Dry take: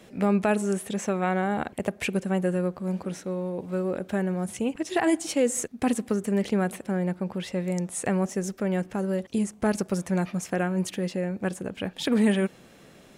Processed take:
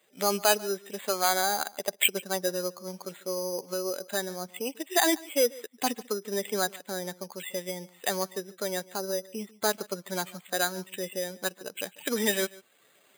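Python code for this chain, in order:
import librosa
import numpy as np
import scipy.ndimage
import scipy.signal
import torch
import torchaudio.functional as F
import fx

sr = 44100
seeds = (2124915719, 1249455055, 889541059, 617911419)

p1 = fx.bin_expand(x, sr, power=1.5)
p2 = fx.recorder_agc(p1, sr, target_db=-24.0, rise_db_per_s=11.0, max_gain_db=30)
p3 = scipy.signal.sosfilt(scipy.signal.butter(2, 480.0, 'highpass', fs=sr, output='sos'), p2)
p4 = 10.0 ** (-25.0 / 20.0) * np.tanh(p3 / 10.0 ** (-25.0 / 20.0))
p5 = p3 + (p4 * librosa.db_to_amplitude(-4.0))
p6 = fx.lowpass_res(p5, sr, hz=4600.0, q=4.9)
p7 = np.repeat(scipy.signal.resample_poly(p6, 1, 8), 8)[:len(p6)]
p8 = fx.high_shelf(p7, sr, hz=3600.0, db=9.5)
y = p8 + 10.0 ** (-21.5 / 20.0) * np.pad(p8, (int(144 * sr / 1000.0), 0))[:len(p8)]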